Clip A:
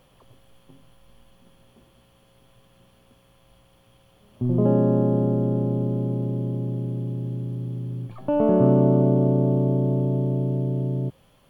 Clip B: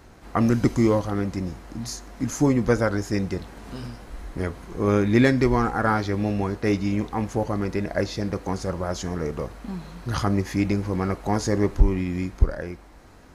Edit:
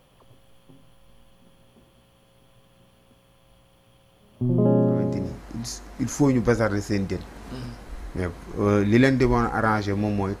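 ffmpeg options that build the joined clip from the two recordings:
-filter_complex "[0:a]apad=whole_dur=10.4,atrim=end=10.4,atrim=end=5.42,asetpts=PTS-STARTPTS[a];[1:a]atrim=start=1.01:end=6.61,asetpts=PTS-STARTPTS[b];[a][b]acrossfade=d=0.62:c1=tri:c2=tri"

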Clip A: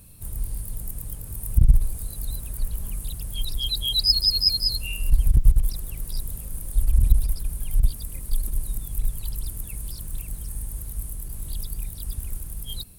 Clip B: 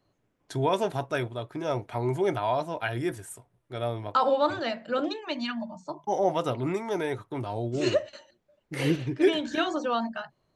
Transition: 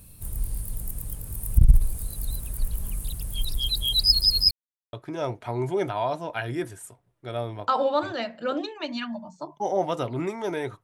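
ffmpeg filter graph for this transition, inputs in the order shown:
-filter_complex "[0:a]apad=whole_dur=10.83,atrim=end=10.83,asplit=2[a][b];[a]atrim=end=4.51,asetpts=PTS-STARTPTS,afade=t=out:st=4.506:d=0.004:c=hsin[c];[b]atrim=start=4.51:end=4.93,asetpts=PTS-STARTPTS,volume=0[d];[1:a]atrim=start=1.4:end=7.3,asetpts=PTS-STARTPTS,afade=t=in:d=0.004:c=hsin[e];[c][d][e]concat=n=3:v=0:a=1"

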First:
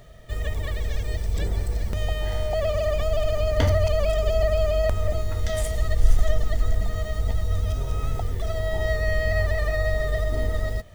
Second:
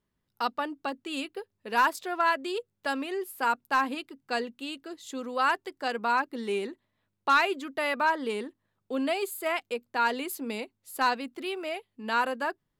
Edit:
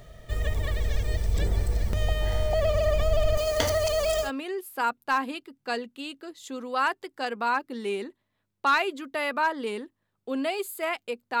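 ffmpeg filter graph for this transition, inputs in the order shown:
-filter_complex "[0:a]asettb=1/sr,asplit=3[a][b][c];[a]atrim=end=3.374[d];[b]atrim=start=3.37:end=4.31,asetpts=PTS-STARTPTS,afade=t=in:d=0.004:c=qsin,afade=t=out:st=0.936:d=0.004:c=qsin,bass=f=250:g=-13,treble=f=4k:g=10[e];[c]atrim=start=4.306[f];[d][e]acrossfade=d=0.004:c1=hsin:c2=qsin[g];[g][f]acrossfade=d=0.004:c1=qsin:c2=hsin,apad=whole_dur=11.4,atrim=end=11.4,atrim=end=4.31,asetpts=PTS-STARTPTS[h];[1:a]atrim=start=2.84:end=10.03,asetpts=PTS-STARTPTS[i];[h][i]acrossfade=d=0.1:c1=tri:c2=tri"

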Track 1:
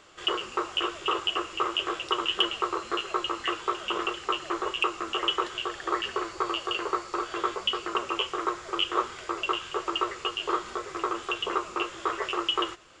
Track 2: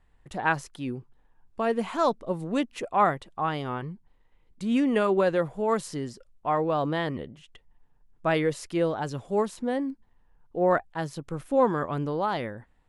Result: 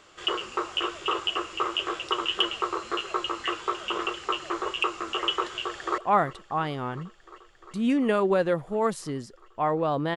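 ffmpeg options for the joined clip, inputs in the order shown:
-filter_complex "[0:a]apad=whole_dur=10.16,atrim=end=10.16,atrim=end=5.982[a];[1:a]atrim=start=2.848:end=7.03[b];[a][b]acrossfade=d=0.004:c1=hsin:c2=hsin,asplit=2[c][d];[d]afade=t=in:st=5.61:d=0.01,afade=t=out:st=5.98:d=0.01,aecho=0:1:350|700|1050|1400|1750|2100|2450|2800|3150|3500|3850|4200:0.158489|0.134716|0.114509|0.0973323|0.0827324|0.0703226|0.0597742|0.050808|0.0431868|0.0367088|0.0312025|0.0265221[e];[c][e]amix=inputs=2:normalize=0"

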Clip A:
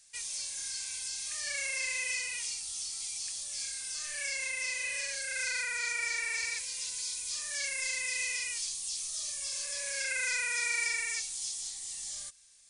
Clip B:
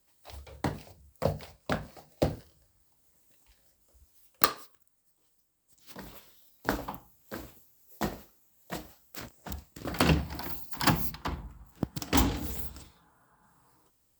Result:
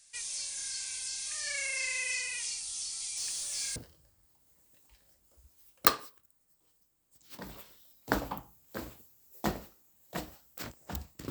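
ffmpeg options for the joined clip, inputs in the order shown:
-filter_complex "[0:a]asettb=1/sr,asplit=3[a][b][c];[a]atrim=end=3.174[d];[b]atrim=start=3.17:end=3.76,asetpts=PTS-STARTPTS,afade=t=in:d=0.004:c=qsin,afade=t=out:st=0.586:d=0.004:c=qsin,aeval=exprs='val(0)+0.5*0.00794*sgn(val(0))':c=same[e];[c]atrim=start=3.756[f];[d][e]acrossfade=d=0.004:c1=hsin:c2=qsin[g];[g][f]acrossfade=d=0.004:c1=qsin:c2=hsin,apad=whole_dur=11.3,atrim=end=11.3,atrim=end=3.762[h];[1:a]atrim=start=2.328:end=9.87[i];[h][i]acrossfade=d=0.004:c1=hsin:c2=hsin"

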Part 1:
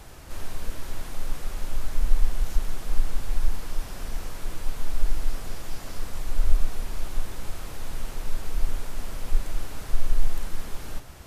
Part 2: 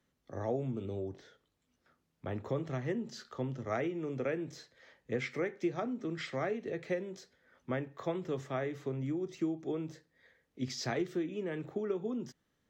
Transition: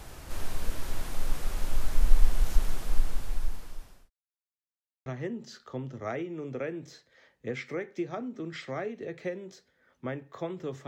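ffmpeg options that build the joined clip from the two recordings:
-filter_complex "[0:a]apad=whole_dur=10.87,atrim=end=10.87,asplit=2[a][b];[a]atrim=end=4.1,asetpts=PTS-STARTPTS,afade=t=out:st=2.63:d=1.47[c];[b]atrim=start=4.1:end=5.06,asetpts=PTS-STARTPTS,volume=0[d];[1:a]atrim=start=2.71:end=8.52,asetpts=PTS-STARTPTS,afade=t=in:d=0.004:c=hsin[e];[c][d][e]concat=n=3:v=0:a=1"

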